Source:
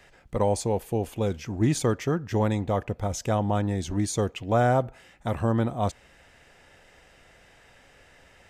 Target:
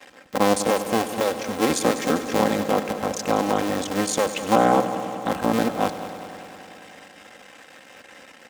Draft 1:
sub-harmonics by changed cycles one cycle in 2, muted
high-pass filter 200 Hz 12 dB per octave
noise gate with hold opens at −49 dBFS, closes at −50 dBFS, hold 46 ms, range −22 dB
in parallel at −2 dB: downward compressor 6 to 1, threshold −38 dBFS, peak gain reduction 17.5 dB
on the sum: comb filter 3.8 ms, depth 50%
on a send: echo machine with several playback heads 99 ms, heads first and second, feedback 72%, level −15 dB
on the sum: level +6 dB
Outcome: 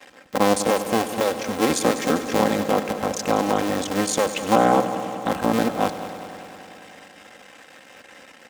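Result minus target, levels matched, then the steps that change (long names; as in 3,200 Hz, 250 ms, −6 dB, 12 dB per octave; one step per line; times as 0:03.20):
downward compressor: peak gain reduction −7 dB
change: downward compressor 6 to 1, threshold −46.5 dBFS, peak gain reduction 24.5 dB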